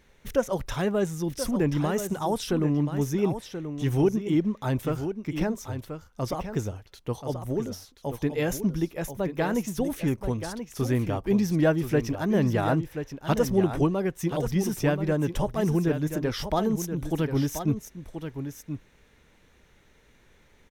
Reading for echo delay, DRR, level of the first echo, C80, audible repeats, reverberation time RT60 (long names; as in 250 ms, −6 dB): 1,031 ms, no reverb audible, −9.0 dB, no reverb audible, 1, no reverb audible